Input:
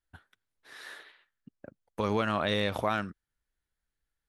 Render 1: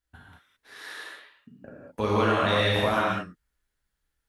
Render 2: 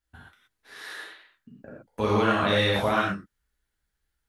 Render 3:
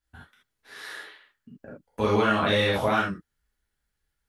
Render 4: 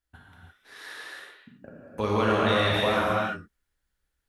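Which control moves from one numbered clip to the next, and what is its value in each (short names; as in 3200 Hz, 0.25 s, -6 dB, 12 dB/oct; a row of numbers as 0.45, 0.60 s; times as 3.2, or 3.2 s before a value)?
non-linear reverb, gate: 0.24, 0.15, 0.1, 0.37 s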